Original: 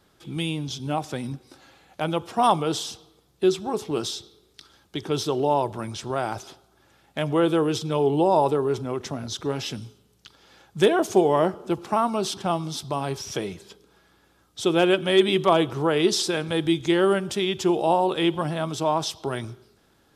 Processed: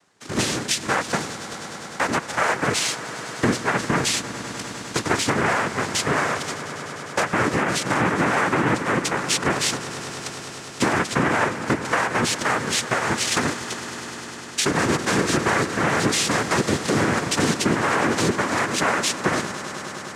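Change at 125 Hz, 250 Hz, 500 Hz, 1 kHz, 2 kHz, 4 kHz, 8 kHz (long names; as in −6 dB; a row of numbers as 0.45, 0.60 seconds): +3.0, +1.0, −3.0, +2.5, +11.5, +4.0, +11.0 decibels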